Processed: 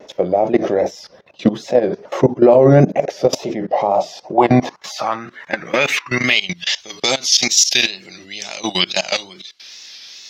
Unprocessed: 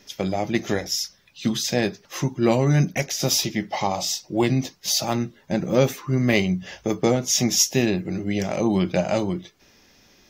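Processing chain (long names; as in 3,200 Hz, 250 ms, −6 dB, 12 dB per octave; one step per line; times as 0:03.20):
low-shelf EQ 77 Hz +4.5 dB
output level in coarse steps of 20 dB
band-pass filter sweep 550 Hz → 4,100 Hz, 0:03.94–0:06.75
tape wow and flutter 91 cents
boost into a limiter +31 dB
level −1 dB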